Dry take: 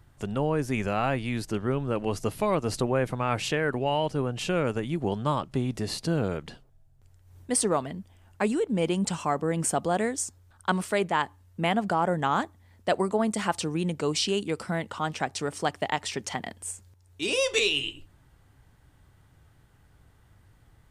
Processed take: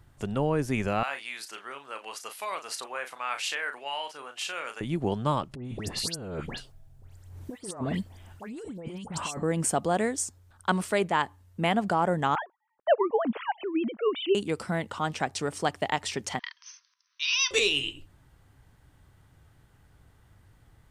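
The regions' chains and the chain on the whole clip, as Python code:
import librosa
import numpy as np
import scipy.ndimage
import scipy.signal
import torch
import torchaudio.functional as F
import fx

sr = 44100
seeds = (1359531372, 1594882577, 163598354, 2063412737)

y = fx.chain(x, sr, fx.highpass(hz=1200.0, slope=12),
    fx.doubler(ms=36.0, db=-8.5), at=(1.03, 4.81))
y = fx.chain(y, sr, fx.over_compress(threshold_db=-36.0, ratio=-1.0),
    fx.dispersion(late='highs', ms=102.0, hz=2100.0), at=(5.55, 9.43))
y = fx.chain(y, sr, fx.sine_speech(),
    fx.env_lowpass(base_hz=650.0, full_db=-22.0), at=(12.35, 14.35))
y = fx.chain(y, sr, fx.brickwall_bandpass(low_hz=940.0, high_hz=6300.0),
    fx.high_shelf(hz=4500.0, db=11.5), at=(16.39, 17.51))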